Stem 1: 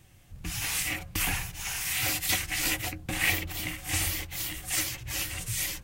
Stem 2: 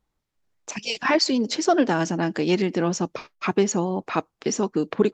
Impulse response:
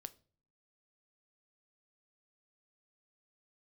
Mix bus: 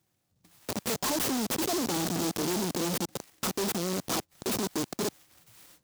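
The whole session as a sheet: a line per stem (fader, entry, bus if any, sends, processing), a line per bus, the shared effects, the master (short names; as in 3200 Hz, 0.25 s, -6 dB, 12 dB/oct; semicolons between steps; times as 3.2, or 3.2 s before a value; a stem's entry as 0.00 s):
-12.5 dB, 0.00 s, no send, compressor 10:1, threshold -35 dBFS, peak gain reduction 14.5 dB; ending taper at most 140 dB/s; auto duck -8 dB, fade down 0.65 s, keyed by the second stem
-4.0 dB, 0.00 s, no send, Schmitt trigger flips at -28.5 dBFS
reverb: off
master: HPF 170 Hz 12 dB/oct; noise-modulated delay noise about 5200 Hz, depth 0.13 ms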